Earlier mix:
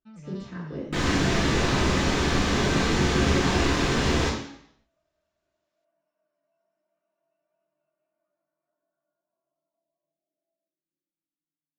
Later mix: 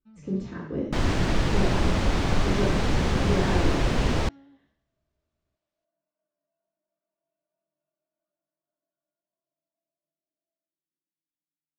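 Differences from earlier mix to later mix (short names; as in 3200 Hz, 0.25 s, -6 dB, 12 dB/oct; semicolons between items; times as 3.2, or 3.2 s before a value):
first sound -11.5 dB; second sound: send off; master: add low shelf 480 Hz +8 dB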